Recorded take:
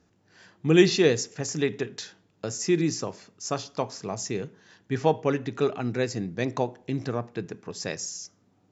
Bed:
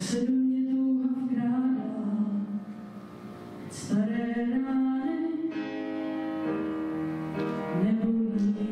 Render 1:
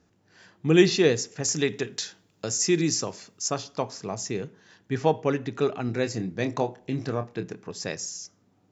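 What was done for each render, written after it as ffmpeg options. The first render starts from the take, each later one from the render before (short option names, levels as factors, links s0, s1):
-filter_complex "[0:a]asettb=1/sr,asplit=3[s0][s1][s2];[s0]atrim=end=1.444[s3];[s1]atrim=start=1.44:end=3.48,asetpts=PTS-STARTPTS,afade=t=in:d=0.004:c=qsin,afade=t=out:st=2.036:d=0.004:c=qsin,highshelf=f=3600:g=9.5[s4];[s2]atrim=start=3.476[s5];[s3][s4]acrossfade=d=0.004:c1=hsin:c2=qsin[s6];[s6][s5]acrossfade=d=0.004:c1=qsin:c2=hsin,asettb=1/sr,asplit=3[s7][s8][s9];[s7]atrim=end=5.864[s10];[s8]atrim=start=5.86:end=7.63,asetpts=PTS-STARTPTS,afade=t=in:d=0.004:c=qsin,afade=t=out:st=1.766:d=0.004:c=qsin,asplit=2[s11][s12];[s12]adelay=27,volume=0.376[s13];[s11][s13]amix=inputs=2:normalize=0,atrim=end_sample=78057[s14];[s9]atrim=start=7.626[s15];[s10][s14]acrossfade=d=0.004:c1=hsin:c2=qsin[s16];[s16][s15]acrossfade=d=0.004:c1=qsin:c2=hsin"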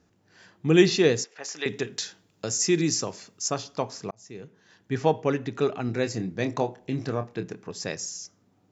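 -filter_complex "[0:a]asettb=1/sr,asplit=3[s0][s1][s2];[s0]atrim=end=1.244[s3];[s1]atrim=start=1.24:end=1.66,asetpts=PTS-STARTPTS,afade=t=in:d=0.004:c=qsin,afade=t=out:st=0.416:d=0.004:c=qsin,highpass=680,lowpass=3700[s4];[s2]atrim=start=1.656[s5];[s3][s4]acrossfade=d=0.004:c1=hsin:c2=qsin[s6];[s6][s5]acrossfade=d=0.004:c1=qsin:c2=hsin,asplit=2[s7][s8];[s7]atrim=end=4.11,asetpts=PTS-STARTPTS,afade=t=out:st=4.106:d=0.004:c=hsin[s9];[s8]atrim=start=4.11,asetpts=PTS-STARTPTS,afade=t=in:d=0.83[s10];[s9][s10]concat=n=2:v=0:a=1"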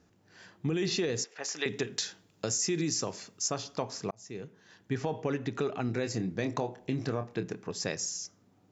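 -af "alimiter=limit=0.158:level=0:latency=1:release=18,acompressor=threshold=0.0447:ratio=6"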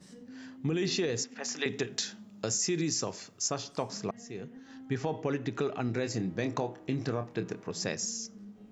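-filter_complex "[1:a]volume=0.075[s0];[0:a][s0]amix=inputs=2:normalize=0"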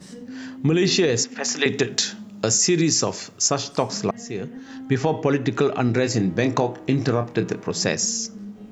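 -af "volume=3.76"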